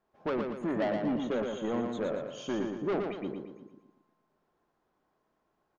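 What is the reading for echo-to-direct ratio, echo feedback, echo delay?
-3.5 dB, 45%, 116 ms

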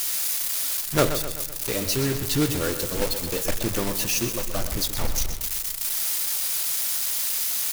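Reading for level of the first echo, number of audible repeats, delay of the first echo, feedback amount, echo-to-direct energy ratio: -10.0 dB, 5, 127 ms, 52%, -8.5 dB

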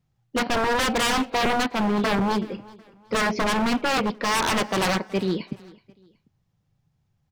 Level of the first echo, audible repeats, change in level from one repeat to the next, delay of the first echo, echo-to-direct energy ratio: -22.0 dB, 2, -9.5 dB, 373 ms, -21.5 dB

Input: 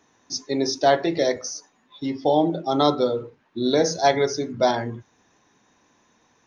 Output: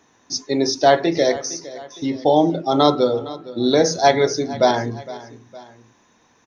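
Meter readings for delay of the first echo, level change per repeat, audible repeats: 461 ms, -6.0 dB, 2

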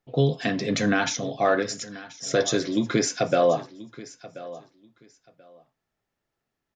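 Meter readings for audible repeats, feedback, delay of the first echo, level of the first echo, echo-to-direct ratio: 2, 19%, 1033 ms, -18.0 dB, -18.0 dB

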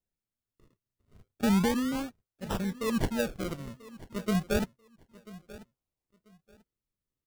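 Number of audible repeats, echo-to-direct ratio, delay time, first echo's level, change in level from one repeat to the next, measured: 2, -19.0 dB, 989 ms, -19.0 dB, -13.0 dB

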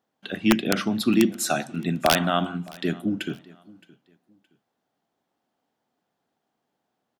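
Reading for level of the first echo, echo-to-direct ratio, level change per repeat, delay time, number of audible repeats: -23.5 dB, -23.0 dB, -11.5 dB, 618 ms, 2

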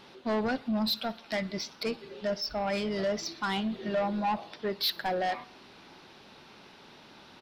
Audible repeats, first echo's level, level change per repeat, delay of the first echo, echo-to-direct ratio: 3, -23.5 dB, -4.5 dB, 61 ms, -22.0 dB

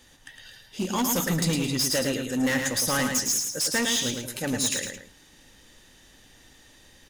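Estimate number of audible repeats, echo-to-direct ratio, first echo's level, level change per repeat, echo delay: 2, -4.5 dB, -5.0 dB, -8.5 dB, 109 ms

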